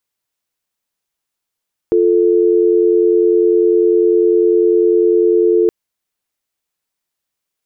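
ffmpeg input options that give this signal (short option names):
-f lavfi -i "aevalsrc='0.266*(sin(2*PI*350*t)+sin(2*PI*440*t))':d=3.77:s=44100"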